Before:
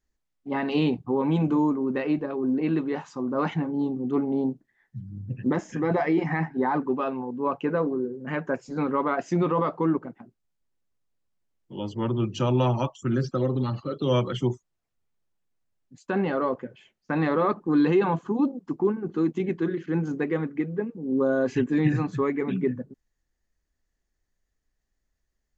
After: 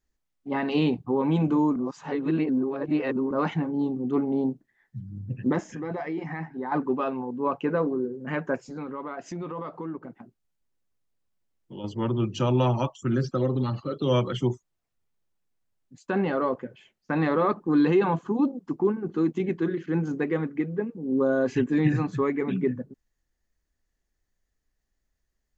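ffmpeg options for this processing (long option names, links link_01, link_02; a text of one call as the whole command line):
ffmpeg -i in.wav -filter_complex "[0:a]asettb=1/sr,asplit=3[link_01][link_02][link_03];[link_01]atrim=end=5.634[link_04];[link_02]atrim=start=5.63:end=6.72,asetpts=PTS-STARTPTS,afade=type=in:duration=0.004:curve=qsin,afade=type=out:start_time=1.086:duration=0.004:curve=qsin,acompressor=threshold=-43dB:ratio=1.5:attack=3.2:release=140:knee=1:detection=peak[link_05];[link_03]atrim=start=6.716[link_06];[link_04][link_05]acrossfade=duration=0.004:curve1=hsin:curve2=qsin[link_07];[link_07][link_06]acrossfade=duration=0.004:curve1=qsin:curve2=hsin,asettb=1/sr,asplit=3[link_08][link_09][link_10];[link_08]atrim=end=8.594[link_11];[link_09]atrim=start=8.59:end=11.84,asetpts=PTS-STARTPTS,afade=type=in:duration=0.004:curve=qsin,afade=type=out:start_time=3.246:duration=0.004:curve=qsin,acompressor=threshold=-36dB:ratio=2.5:attack=3.2:release=140:knee=1:detection=peak[link_12];[link_10]atrim=start=11.836[link_13];[link_11][link_12]acrossfade=duration=0.004:curve1=hsin:curve2=qsin[link_14];[link_14][link_13]acrossfade=duration=0.004:curve1=qsin:curve2=hsin,asplit=3[link_15][link_16][link_17];[link_15]atrim=end=1.762[link_18];[link_16]atrim=start=1.758:end=3.312,asetpts=PTS-STARTPTS,areverse[link_19];[link_17]atrim=start=3.308[link_20];[link_18][link_19]acrossfade=duration=0.004:curve1=hsin:curve2=hsin[link_21];[link_21][link_20]acrossfade=duration=0.004:curve1=hsin:curve2=hsin" out.wav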